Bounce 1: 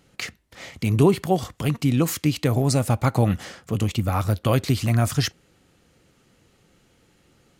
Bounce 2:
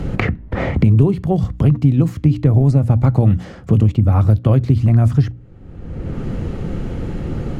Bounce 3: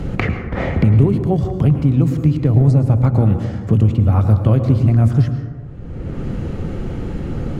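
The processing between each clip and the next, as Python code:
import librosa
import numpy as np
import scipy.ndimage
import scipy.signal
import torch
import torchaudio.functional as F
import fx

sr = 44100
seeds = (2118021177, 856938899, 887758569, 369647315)

y1 = fx.tilt_eq(x, sr, slope=-4.5)
y1 = fx.hum_notches(y1, sr, base_hz=60, count=5)
y1 = fx.band_squash(y1, sr, depth_pct=100)
y1 = y1 * librosa.db_to_amplitude(-3.0)
y2 = fx.rev_plate(y1, sr, seeds[0], rt60_s=1.4, hf_ratio=0.35, predelay_ms=95, drr_db=7.0)
y2 = y2 * librosa.db_to_amplitude(-1.0)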